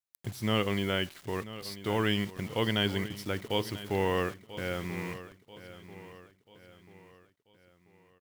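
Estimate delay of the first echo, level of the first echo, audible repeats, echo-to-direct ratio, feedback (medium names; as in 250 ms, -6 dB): 988 ms, -15.0 dB, 3, -14.0 dB, 45%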